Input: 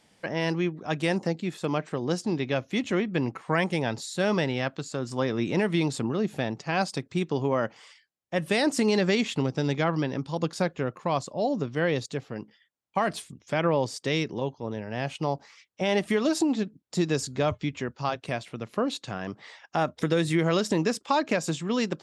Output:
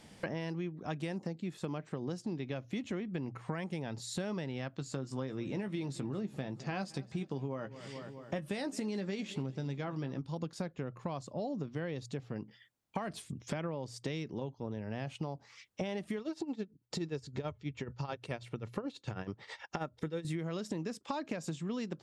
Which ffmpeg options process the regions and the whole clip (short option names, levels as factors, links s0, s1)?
-filter_complex "[0:a]asettb=1/sr,asplit=3[s0][s1][s2];[s0]atrim=end=4.794[s3];[s1]atrim=start=4.79:end=10.21,asetpts=PTS-STARTPTS,afade=t=in:d=0.004:c=qsin,afade=t=out:st=5.416:d=0.004:c=qsin,asplit=2[s4][s5];[s5]adelay=15,volume=0.355[s6];[s4][s6]amix=inputs=2:normalize=0,atrim=end_sample=239022,aecho=1:1:215|430|645|860:0.0794|0.0437|0.024|0.0132,atrim=end_sample=239022[s7];[s2]atrim=start=10.206[s8];[s3][s7]acrossfade=d=0.004:c1=hsin:c2=qsin[s9];[s9][s8]acrossfade=d=0.004:c1=qsin:c2=hsin,asettb=1/sr,asplit=3[s10][s11][s12];[s10]atrim=end=16.194[s13];[s11]atrim=start=16.19:end=20.25,asetpts=PTS-STARTPTS,afade=t=in:d=0.004:c=qsin,afade=t=out:st=4.056:d=0.004:c=qsin,aecho=1:1:2.2:0.32,atrim=end_sample=179046,acrossover=split=5300[s14][s15];[s15]acompressor=threshold=0.00316:ratio=4:attack=1:release=60[s16];[s14][s16]amix=inputs=2:normalize=0,tremolo=f=9.3:d=0.83[s17];[s12]atrim=start=20.246[s18];[s13][s17]acrossfade=d=0.004:c1=hsin:c2=qsin[s19];[s19][s18]acrossfade=d=0.004:c1=qsin:c2=hsin,lowshelf=f=280:g=8.5,bandreject=f=60:t=h:w=6,bandreject=f=120:t=h:w=6,acompressor=threshold=0.0112:ratio=8,volume=1.5"